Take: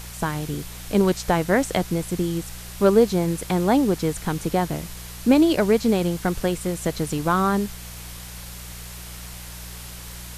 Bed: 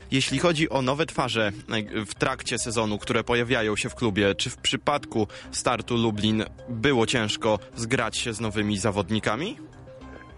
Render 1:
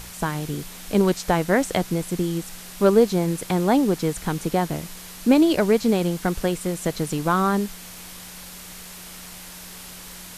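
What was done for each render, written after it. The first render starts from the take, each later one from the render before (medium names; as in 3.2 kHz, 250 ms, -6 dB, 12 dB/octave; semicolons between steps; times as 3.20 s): de-hum 60 Hz, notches 2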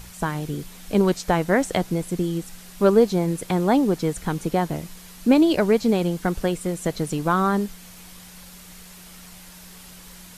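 noise reduction 6 dB, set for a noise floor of -40 dBFS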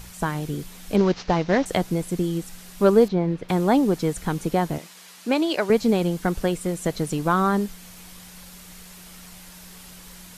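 0.96–1.66 s: CVSD coder 32 kbps; 3.08–3.49 s: distance through air 250 m; 4.78–5.70 s: frequency weighting A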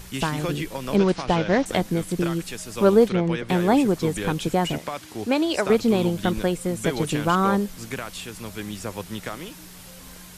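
add bed -8 dB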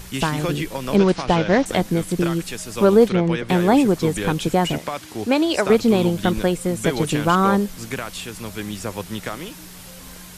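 trim +3.5 dB; peak limiter -3 dBFS, peak gain reduction 2.5 dB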